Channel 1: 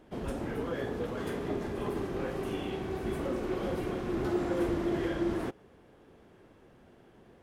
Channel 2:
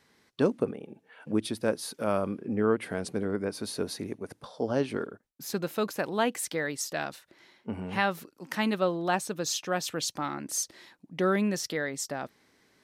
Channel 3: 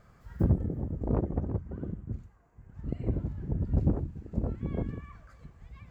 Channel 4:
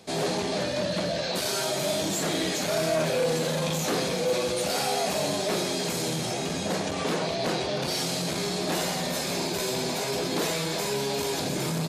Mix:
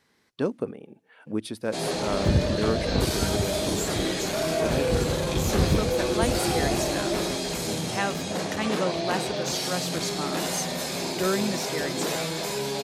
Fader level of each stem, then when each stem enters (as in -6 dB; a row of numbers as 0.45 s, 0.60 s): -0.5 dB, -1.5 dB, +2.5 dB, -1.0 dB; 1.85 s, 0.00 s, 1.85 s, 1.65 s